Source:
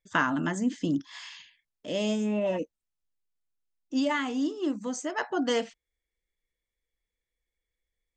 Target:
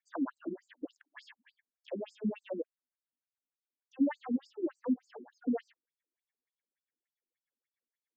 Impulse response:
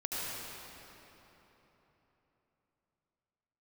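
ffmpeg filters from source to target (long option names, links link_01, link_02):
-filter_complex "[0:a]acrossover=split=650|1400[link_01][link_02][link_03];[link_01]acompressor=threshold=-27dB:ratio=4[link_04];[link_02]acompressor=threshold=-41dB:ratio=4[link_05];[link_03]acompressor=threshold=-46dB:ratio=4[link_06];[link_04][link_05][link_06]amix=inputs=3:normalize=0,equalizer=frequency=250:width_type=o:width=0.67:gain=10,equalizer=frequency=630:width_type=o:width=0.67:gain=4,equalizer=frequency=1600:width_type=o:width=0.67:gain=10,equalizer=frequency=6300:width_type=o:width=0.67:gain=-9,afftfilt=real='re*between(b*sr/1024,250*pow(6500/250,0.5+0.5*sin(2*PI*3.4*pts/sr))/1.41,250*pow(6500/250,0.5+0.5*sin(2*PI*3.4*pts/sr))*1.41)':imag='im*between(b*sr/1024,250*pow(6500/250,0.5+0.5*sin(2*PI*3.4*pts/sr))/1.41,250*pow(6500/250,0.5+0.5*sin(2*PI*3.4*pts/sr))*1.41)':win_size=1024:overlap=0.75,volume=-3.5dB"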